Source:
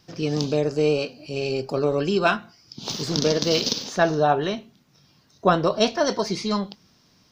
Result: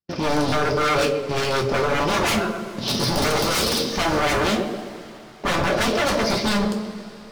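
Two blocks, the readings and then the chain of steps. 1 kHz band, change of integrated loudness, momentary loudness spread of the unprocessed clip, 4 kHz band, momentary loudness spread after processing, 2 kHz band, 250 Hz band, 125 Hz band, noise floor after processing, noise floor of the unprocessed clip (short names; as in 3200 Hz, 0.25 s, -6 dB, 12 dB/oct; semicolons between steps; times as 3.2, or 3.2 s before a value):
+3.0 dB, +1.5 dB, 9 LU, +3.5 dB, 9 LU, +6.0 dB, +2.0 dB, +1.5 dB, -41 dBFS, -60 dBFS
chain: air absorption 180 m; sample leveller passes 3; in parallel at -8 dB: soft clip -19 dBFS, distortion -9 dB; on the sum: rotary speaker horn 5.5 Hz; gate -34 dBFS, range -27 dB; resonant high shelf 6700 Hz -7 dB, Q 3; tape echo 0.13 s, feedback 58%, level -9 dB, low-pass 1300 Hz; vibrato 2.1 Hz 13 cents; wavefolder -15.5 dBFS; two-slope reverb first 0.23 s, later 4.1 s, from -22 dB, DRR 1 dB; gain -2.5 dB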